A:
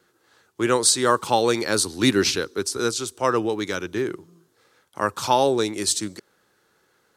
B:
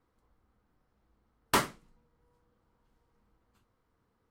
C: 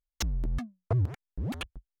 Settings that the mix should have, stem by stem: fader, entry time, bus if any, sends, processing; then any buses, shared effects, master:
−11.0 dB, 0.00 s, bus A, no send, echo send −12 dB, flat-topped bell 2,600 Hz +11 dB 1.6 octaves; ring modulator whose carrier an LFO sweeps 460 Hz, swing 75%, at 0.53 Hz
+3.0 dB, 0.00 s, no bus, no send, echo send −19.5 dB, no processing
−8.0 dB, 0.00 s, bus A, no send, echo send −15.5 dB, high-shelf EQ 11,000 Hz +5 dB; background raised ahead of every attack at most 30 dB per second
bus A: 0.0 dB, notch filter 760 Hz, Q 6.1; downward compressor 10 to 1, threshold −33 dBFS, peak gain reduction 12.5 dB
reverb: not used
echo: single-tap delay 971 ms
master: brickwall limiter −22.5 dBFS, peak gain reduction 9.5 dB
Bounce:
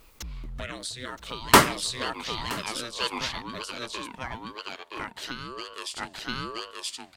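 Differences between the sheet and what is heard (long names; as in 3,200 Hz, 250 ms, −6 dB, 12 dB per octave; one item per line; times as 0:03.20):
stem A −11.0 dB → −1.0 dB
stem B +3.0 dB → +11.5 dB
master: missing brickwall limiter −22.5 dBFS, peak gain reduction 9.5 dB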